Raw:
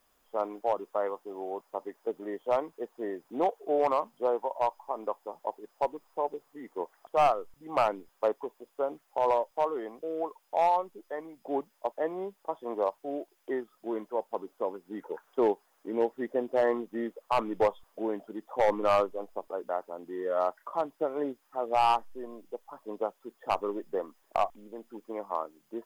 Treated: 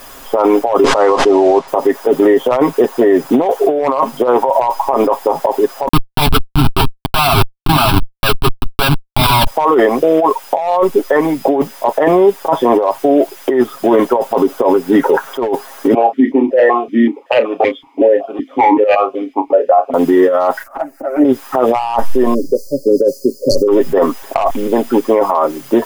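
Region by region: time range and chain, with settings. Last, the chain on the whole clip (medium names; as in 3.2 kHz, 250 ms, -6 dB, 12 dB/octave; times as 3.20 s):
0.84–1.68 s: CVSD coder 64 kbps + distance through air 130 m + swell ahead of each attack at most 63 dB/s
5.88–9.47 s: treble shelf 3.2 kHz +11.5 dB + Schmitt trigger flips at -38 dBFS + static phaser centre 1.9 kHz, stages 6
15.94–19.94 s: doubling 31 ms -10.5 dB + stepped vowel filter 5.3 Hz
20.63–21.25 s: slow attack 435 ms + static phaser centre 680 Hz, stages 8 + touch-sensitive flanger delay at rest 10.3 ms, full sweep at -43 dBFS
22.34–23.68 s: brick-wall FIR band-stop 610–4200 Hz + peaking EQ 5.4 kHz +6.5 dB 1.6 oct + tape noise reduction on one side only decoder only
whole clip: comb 7.4 ms, depth 58%; compressor with a negative ratio -36 dBFS, ratio -1; loudness maximiser +29.5 dB; trim -1 dB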